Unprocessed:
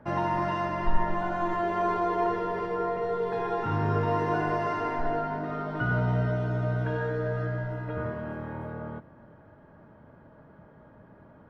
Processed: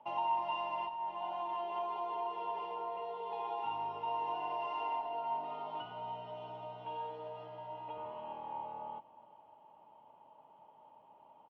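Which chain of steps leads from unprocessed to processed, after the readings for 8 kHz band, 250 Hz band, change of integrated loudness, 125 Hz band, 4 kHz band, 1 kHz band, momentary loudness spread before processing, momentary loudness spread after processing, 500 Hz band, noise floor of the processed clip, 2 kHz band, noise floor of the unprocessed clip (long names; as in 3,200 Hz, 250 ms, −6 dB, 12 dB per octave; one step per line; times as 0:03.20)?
can't be measured, −23.5 dB, −10.5 dB, −31.0 dB, −1.5 dB, −6.0 dB, 8 LU, 9 LU, −13.5 dB, −62 dBFS, −16.5 dB, −54 dBFS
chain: downward compressor 5 to 1, threshold −29 dBFS, peak gain reduction 12.5 dB
pair of resonant band-passes 1,600 Hz, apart 1.7 octaves
on a send: single-tap delay 377 ms −21.5 dB
on the sum: level +5.5 dB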